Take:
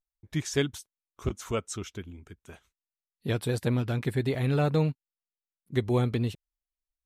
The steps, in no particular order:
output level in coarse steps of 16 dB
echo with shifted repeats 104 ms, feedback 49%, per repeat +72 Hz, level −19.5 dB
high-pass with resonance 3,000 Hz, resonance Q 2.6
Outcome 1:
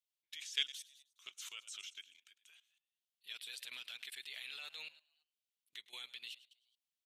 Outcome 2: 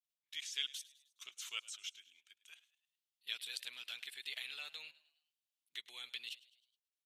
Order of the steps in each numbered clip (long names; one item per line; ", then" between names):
high-pass with resonance, then echo with shifted repeats, then output level in coarse steps
output level in coarse steps, then high-pass with resonance, then echo with shifted repeats